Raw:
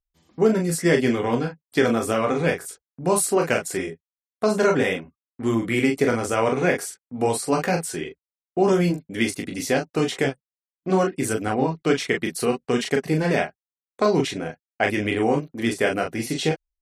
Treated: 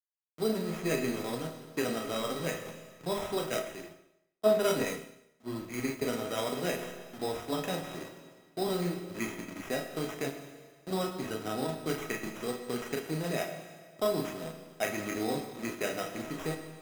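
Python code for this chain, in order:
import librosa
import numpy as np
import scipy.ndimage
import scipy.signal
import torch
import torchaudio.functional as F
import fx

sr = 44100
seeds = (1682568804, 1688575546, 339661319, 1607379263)

y = fx.delta_hold(x, sr, step_db=-26.5)
y = scipy.signal.sosfilt(scipy.signal.butter(4, 110.0, 'highpass', fs=sr, output='sos'), y)
y = fx.high_shelf(y, sr, hz=7600.0, db=-10.0)
y = fx.sample_hold(y, sr, seeds[0], rate_hz=4400.0, jitter_pct=0)
y = fx.comb_fb(y, sr, f0_hz=640.0, decay_s=0.17, harmonics='all', damping=0.0, mix_pct=80)
y = fx.rev_schroeder(y, sr, rt60_s=1.6, comb_ms=25, drr_db=6.0)
y = fx.band_widen(y, sr, depth_pct=100, at=(3.5, 6.02))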